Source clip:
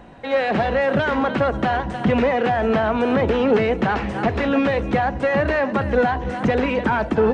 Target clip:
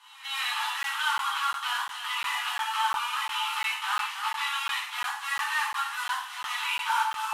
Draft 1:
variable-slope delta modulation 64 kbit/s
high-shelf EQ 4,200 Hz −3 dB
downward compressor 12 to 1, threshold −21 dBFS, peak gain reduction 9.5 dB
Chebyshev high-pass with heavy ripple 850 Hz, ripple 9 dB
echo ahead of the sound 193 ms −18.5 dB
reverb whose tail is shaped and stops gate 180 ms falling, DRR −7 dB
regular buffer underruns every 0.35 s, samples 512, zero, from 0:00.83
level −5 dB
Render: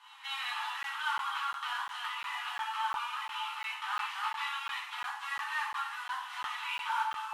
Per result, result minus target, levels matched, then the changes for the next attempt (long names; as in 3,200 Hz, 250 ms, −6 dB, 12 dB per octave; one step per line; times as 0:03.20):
downward compressor: peak gain reduction +9.5 dB; 8,000 Hz band −6.5 dB
remove: downward compressor 12 to 1, threshold −21 dBFS, peak gain reduction 9.5 dB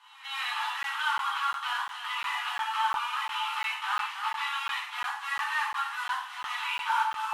8,000 Hz band −6.5 dB
change: high-shelf EQ 4,200 Hz +7.5 dB